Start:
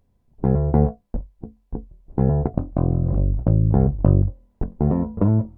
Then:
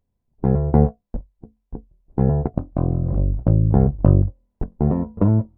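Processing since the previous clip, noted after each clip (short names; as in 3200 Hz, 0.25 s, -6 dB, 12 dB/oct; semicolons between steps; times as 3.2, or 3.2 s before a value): upward expander 1.5:1, over -39 dBFS; gain +3.5 dB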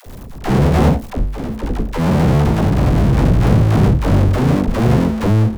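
echoes that change speed 0.1 s, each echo +2 st, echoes 2; power-law curve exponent 0.35; dispersion lows, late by 66 ms, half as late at 450 Hz; gain -6 dB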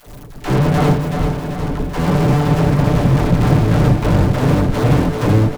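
minimum comb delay 6.8 ms; feedback echo 0.388 s, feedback 56%, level -6 dB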